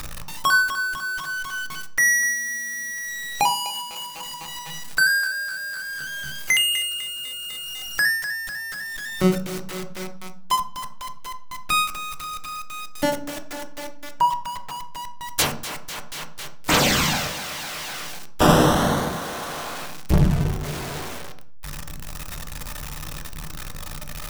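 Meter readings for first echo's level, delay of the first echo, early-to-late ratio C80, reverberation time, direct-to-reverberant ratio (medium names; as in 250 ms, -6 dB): no echo, no echo, 16.0 dB, 0.45 s, 5.5 dB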